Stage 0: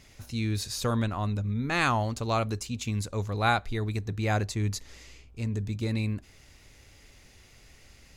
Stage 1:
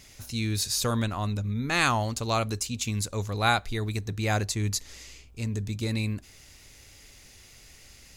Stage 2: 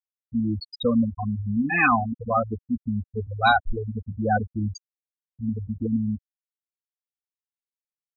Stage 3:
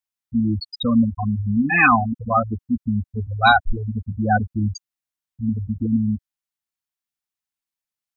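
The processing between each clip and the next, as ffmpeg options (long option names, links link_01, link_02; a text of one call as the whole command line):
ffmpeg -i in.wav -af "highshelf=frequency=3600:gain=9.5" out.wav
ffmpeg -i in.wav -af "afftfilt=real='re*gte(hypot(re,im),0.178)':imag='im*gte(hypot(re,im),0.178)':win_size=1024:overlap=0.75,aecho=1:1:4:0.79,volume=5.5dB" out.wav
ffmpeg -i in.wav -af "equalizer=frequency=460:width_type=o:width=0.48:gain=-13.5,volume=5.5dB" out.wav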